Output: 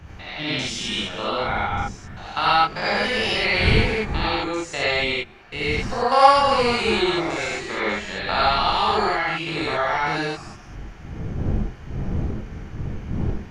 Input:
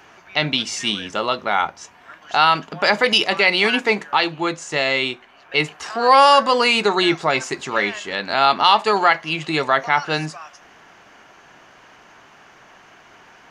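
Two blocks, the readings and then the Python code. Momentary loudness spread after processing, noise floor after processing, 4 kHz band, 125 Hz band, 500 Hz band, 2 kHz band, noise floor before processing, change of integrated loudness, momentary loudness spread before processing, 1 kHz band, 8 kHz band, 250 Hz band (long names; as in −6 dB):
15 LU, −41 dBFS, −4.5 dB, +7.0 dB, −2.5 dB, −3.5 dB, −49 dBFS, −4.0 dB, 10 LU, −3.0 dB, −4.0 dB, −1.0 dB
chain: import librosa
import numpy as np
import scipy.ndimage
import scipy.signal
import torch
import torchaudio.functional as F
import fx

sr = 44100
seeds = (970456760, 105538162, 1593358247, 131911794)

y = fx.spec_steps(x, sr, hold_ms=200)
y = fx.dmg_wind(y, sr, seeds[0], corner_hz=140.0, level_db=-29.0)
y = fx.rev_gated(y, sr, seeds[1], gate_ms=120, shape='rising', drr_db=-6.0)
y = F.gain(torch.from_numpy(y), -6.5).numpy()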